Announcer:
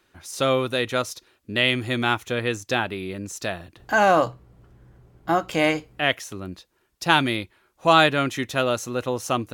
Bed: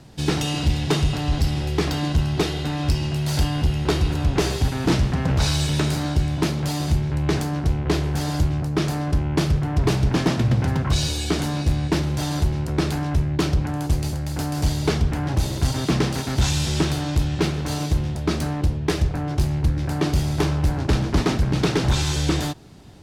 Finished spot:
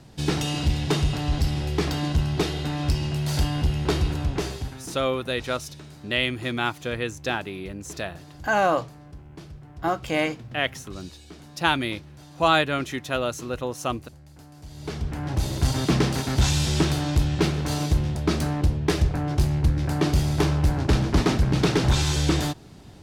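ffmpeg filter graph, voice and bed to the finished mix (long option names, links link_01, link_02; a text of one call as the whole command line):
ffmpeg -i stem1.wav -i stem2.wav -filter_complex "[0:a]adelay=4550,volume=-3.5dB[link_01];[1:a]volume=19dB,afade=type=out:start_time=4:duration=0.92:silence=0.105925,afade=type=in:start_time=14.68:duration=1.04:silence=0.0841395[link_02];[link_01][link_02]amix=inputs=2:normalize=0" out.wav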